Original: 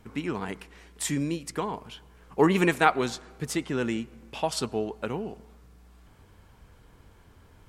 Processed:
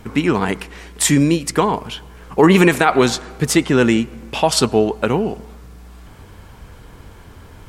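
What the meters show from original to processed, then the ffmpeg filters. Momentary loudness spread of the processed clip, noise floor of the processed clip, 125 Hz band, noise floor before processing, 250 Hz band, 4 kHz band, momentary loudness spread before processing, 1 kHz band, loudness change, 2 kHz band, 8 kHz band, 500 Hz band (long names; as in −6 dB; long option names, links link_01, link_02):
14 LU, −42 dBFS, +13.5 dB, −56 dBFS, +13.0 dB, +13.5 dB, 18 LU, +9.5 dB, +12.0 dB, +10.5 dB, +14.5 dB, +12.0 dB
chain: -af "alimiter=level_in=15.5dB:limit=-1dB:release=50:level=0:latency=1,volume=-1dB"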